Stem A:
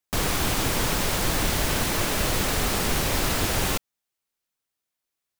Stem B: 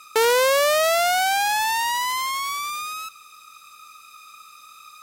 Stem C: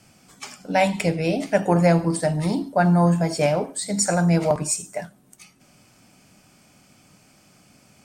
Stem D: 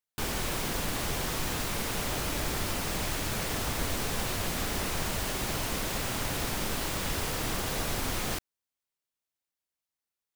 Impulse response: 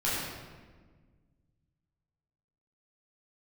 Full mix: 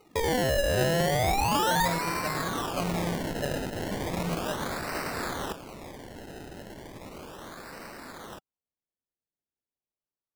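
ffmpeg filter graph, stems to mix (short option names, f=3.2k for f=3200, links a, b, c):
-filter_complex "[0:a]highpass=150,highshelf=f=6.1k:g=9.5,adelay=1750,volume=0.5dB[a];[1:a]afwtdn=0.0562,volume=1dB[b];[2:a]volume=-15.5dB[c];[3:a]highpass=f=170:w=0.5412,highpass=f=170:w=1.3066,bandreject=f=770:w=12,volume=-10dB[d];[a][b]amix=inputs=2:normalize=0,alimiter=limit=-21dB:level=0:latency=1:release=393,volume=0dB[e];[c][d][e]amix=inputs=3:normalize=0,lowpass=f=8.5k:w=0.5412,lowpass=f=8.5k:w=1.3066,equalizer=f=1.5k:w=1.5:g=5,acrusher=samples=26:mix=1:aa=0.000001:lfo=1:lforange=26:lforate=0.35"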